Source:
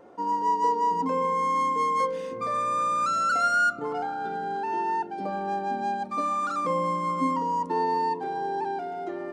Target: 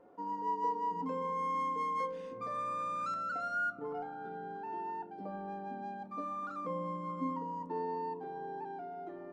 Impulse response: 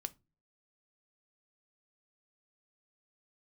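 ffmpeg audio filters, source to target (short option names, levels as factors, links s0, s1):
-filter_complex "[0:a]asetnsamples=n=441:p=0,asendcmd='1.06 lowpass f 3300;3.14 lowpass f 1200',lowpass=f=2000:p=1[s0];[1:a]atrim=start_sample=2205[s1];[s0][s1]afir=irnorm=-1:irlink=0,volume=0.447"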